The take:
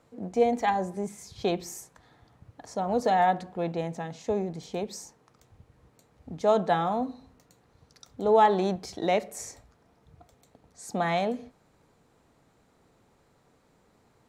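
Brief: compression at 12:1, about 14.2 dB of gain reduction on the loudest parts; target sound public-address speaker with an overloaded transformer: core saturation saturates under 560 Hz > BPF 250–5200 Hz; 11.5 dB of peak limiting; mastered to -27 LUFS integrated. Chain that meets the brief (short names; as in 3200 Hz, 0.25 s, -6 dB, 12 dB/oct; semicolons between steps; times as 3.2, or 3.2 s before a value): compressor 12:1, threshold -30 dBFS; limiter -32 dBFS; core saturation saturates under 560 Hz; BPF 250–5200 Hz; gain +18.5 dB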